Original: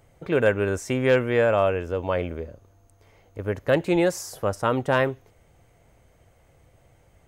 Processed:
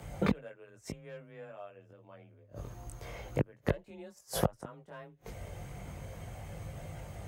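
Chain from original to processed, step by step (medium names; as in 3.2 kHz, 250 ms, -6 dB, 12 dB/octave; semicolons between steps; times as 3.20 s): inverted gate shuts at -24 dBFS, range -40 dB; frequency shift +23 Hz; chorus voices 4, 0.84 Hz, delay 20 ms, depth 1 ms; trim +14.5 dB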